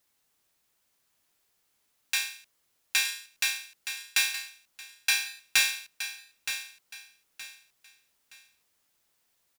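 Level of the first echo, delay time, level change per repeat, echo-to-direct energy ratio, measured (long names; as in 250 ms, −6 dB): −10.0 dB, 920 ms, −10.5 dB, −9.5 dB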